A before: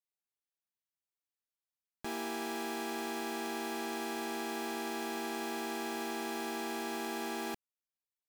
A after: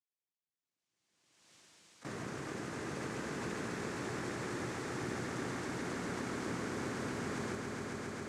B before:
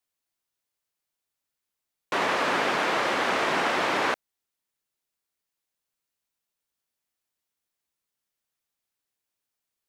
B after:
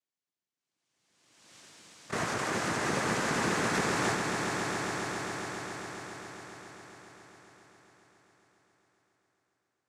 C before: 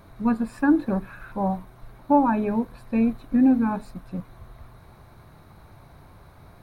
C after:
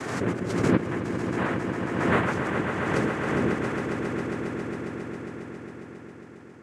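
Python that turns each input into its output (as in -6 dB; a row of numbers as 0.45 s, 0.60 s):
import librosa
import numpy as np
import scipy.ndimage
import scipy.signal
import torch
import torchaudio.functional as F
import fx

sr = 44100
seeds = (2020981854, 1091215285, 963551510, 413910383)

y = fx.spec_quant(x, sr, step_db=15)
y = fx.highpass(y, sr, hz=180.0, slope=6)
y = fx.peak_eq(y, sr, hz=350.0, db=14.0, octaves=0.3)
y = fx.noise_vocoder(y, sr, seeds[0], bands=3)
y = fx.rider(y, sr, range_db=3, speed_s=0.5)
y = fx.echo_swell(y, sr, ms=136, loudest=5, wet_db=-8.5)
y = fx.pre_swell(y, sr, db_per_s=40.0)
y = y * librosa.db_to_amplitude(-8.0)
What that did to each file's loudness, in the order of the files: -2.0 LU, -6.5 LU, -4.0 LU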